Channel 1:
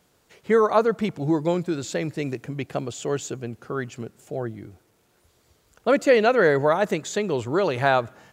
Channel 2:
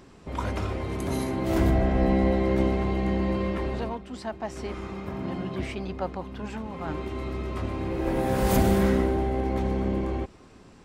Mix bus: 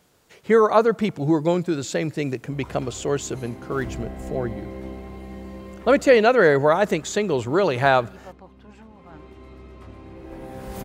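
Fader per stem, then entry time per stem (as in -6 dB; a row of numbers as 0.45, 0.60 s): +2.5, -11.5 dB; 0.00, 2.25 s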